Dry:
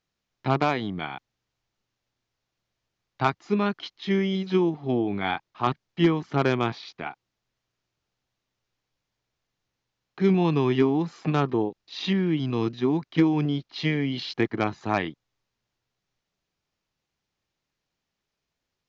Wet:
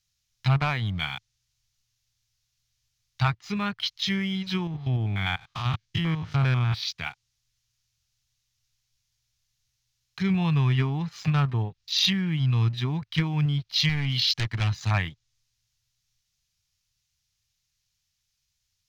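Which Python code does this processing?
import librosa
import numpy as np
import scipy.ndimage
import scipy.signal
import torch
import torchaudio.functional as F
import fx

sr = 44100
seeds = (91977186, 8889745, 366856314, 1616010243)

y = fx.spec_steps(x, sr, hold_ms=100, at=(4.67, 6.83))
y = fx.clip_hard(y, sr, threshold_db=-22.5, at=(13.89, 14.91))
y = fx.env_lowpass_down(y, sr, base_hz=2000.0, full_db=-22.5)
y = fx.curve_eq(y, sr, hz=(110.0, 320.0, 6100.0), db=(0, -29, 5))
y = fx.leveller(y, sr, passes=1)
y = F.gain(torch.from_numpy(y), 9.0).numpy()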